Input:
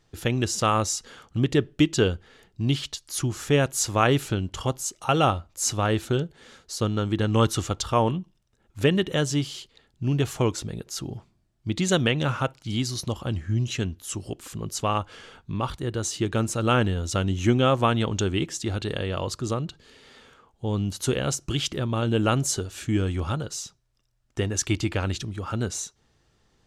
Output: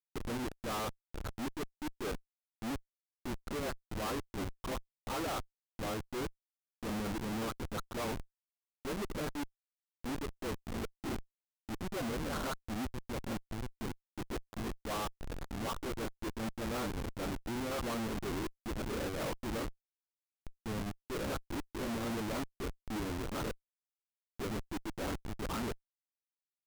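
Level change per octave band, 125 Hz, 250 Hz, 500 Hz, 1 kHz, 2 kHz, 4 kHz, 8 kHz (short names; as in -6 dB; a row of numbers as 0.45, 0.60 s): -18.5, -12.5, -13.5, -12.5, -11.5, -15.0, -18.5 dB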